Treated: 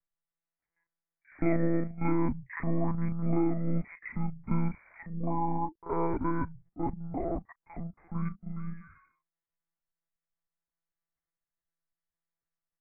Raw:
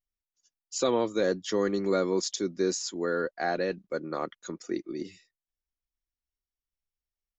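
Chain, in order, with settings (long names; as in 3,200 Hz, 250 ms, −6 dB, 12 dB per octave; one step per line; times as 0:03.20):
one-pitch LPC vocoder at 8 kHz 290 Hz
wrong playback speed 78 rpm record played at 45 rpm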